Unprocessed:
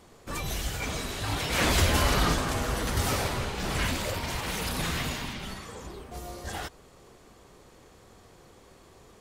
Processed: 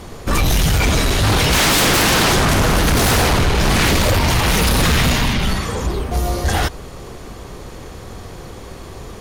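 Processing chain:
low-shelf EQ 130 Hz +8.5 dB
notch filter 7,700 Hz, Q 8.2
sine wavefolder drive 19 dB, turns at −6 dBFS
level −5 dB

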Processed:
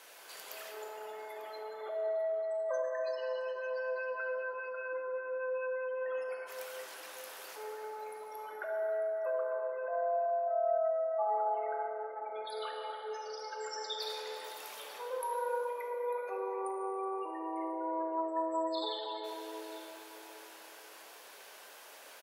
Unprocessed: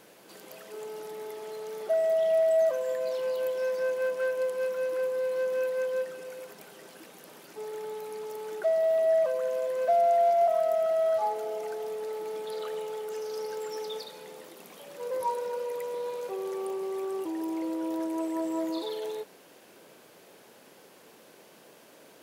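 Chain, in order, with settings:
compressor whose output falls as the input rises −30 dBFS, ratio −1
gate on every frequency bin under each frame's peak −30 dB strong
high-pass filter 840 Hz 12 dB per octave
single-tap delay 896 ms −18.5 dB
dense smooth reverb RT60 3.8 s, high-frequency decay 0.55×, DRR −0.5 dB

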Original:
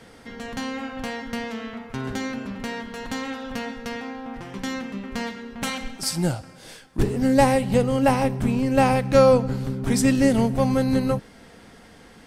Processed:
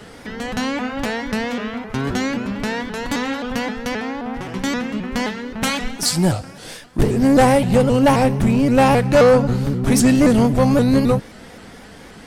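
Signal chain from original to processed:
soft clipping −15.5 dBFS, distortion −12 dB
pitch modulation by a square or saw wave saw up 3.8 Hz, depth 160 cents
level +8 dB

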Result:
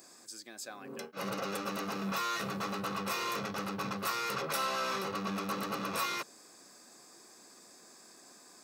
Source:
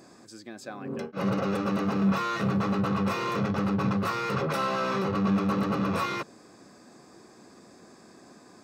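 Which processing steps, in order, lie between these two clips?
RIAA equalisation recording
level −5.5 dB

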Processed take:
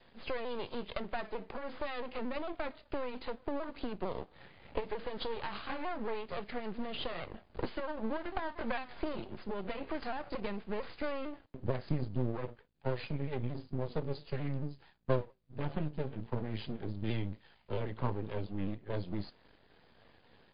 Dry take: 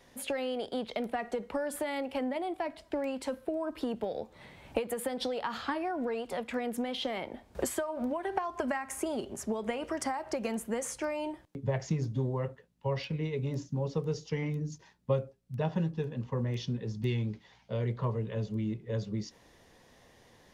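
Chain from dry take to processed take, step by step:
pitch shifter swept by a sawtooth −2.5 semitones, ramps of 225 ms
half-wave rectification
level +2 dB
MP3 32 kbit/s 11,025 Hz

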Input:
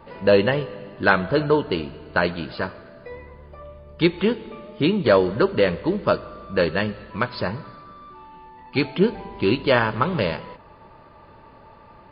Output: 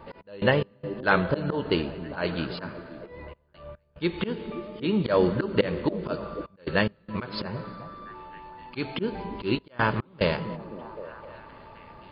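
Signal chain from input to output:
volume swells 172 ms
echo through a band-pass that steps 261 ms, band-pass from 180 Hz, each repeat 0.7 octaves, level −8.5 dB
gate pattern "x.x.xxxxxxxxxxx" 72 BPM −24 dB

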